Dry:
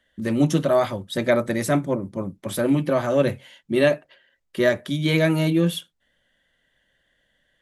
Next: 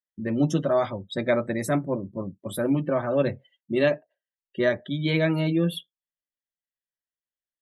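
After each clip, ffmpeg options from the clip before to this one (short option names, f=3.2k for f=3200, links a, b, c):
-af "afftdn=nr=34:nf=-36,volume=-3.5dB"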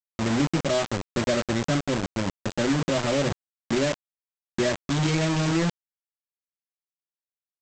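-af "lowshelf=f=470:g=10,acompressor=threshold=-17dB:ratio=6,aresample=16000,acrusher=bits=3:mix=0:aa=0.000001,aresample=44100,volume=-3.5dB"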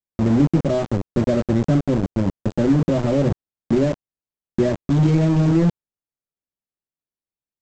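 -af "tiltshelf=f=880:g=9.5"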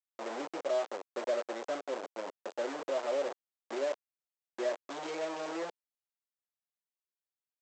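-af "highpass=f=500:w=0.5412,highpass=f=500:w=1.3066,volume=-7.5dB"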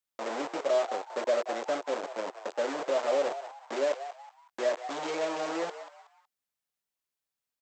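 -filter_complex "[0:a]bandreject=f=360:w=12,asplit=2[a][b];[b]asplit=3[c][d][e];[c]adelay=185,afreqshift=130,volume=-12dB[f];[d]adelay=370,afreqshift=260,volume=-22.2dB[g];[e]adelay=555,afreqshift=390,volume=-32.3dB[h];[f][g][h]amix=inputs=3:normalize=0[i];[a][i]amix=inputs=2:normalize=0,volume=5dB"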